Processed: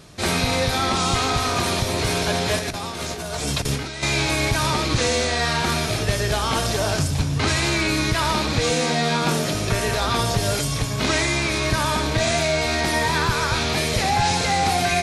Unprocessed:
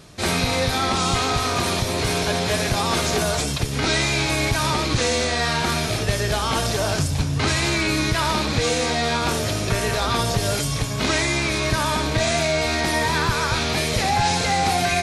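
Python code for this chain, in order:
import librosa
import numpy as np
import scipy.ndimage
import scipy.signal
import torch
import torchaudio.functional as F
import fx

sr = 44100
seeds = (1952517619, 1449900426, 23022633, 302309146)

y = fx.over_compress(x, sr, threshold_db=-26.0, ratio=-0.5, at=(2.59, 4.03))
y = fx.low_shelf_res(y, sr, hz=120.0, db=-10.0, q=3.0, at=(8.71, 9.55))
y = y + 10.0 ** (-16.0 / 20.0) * np.pad(y, (int(117 * sr / 1000.0), 0))[:len(y)]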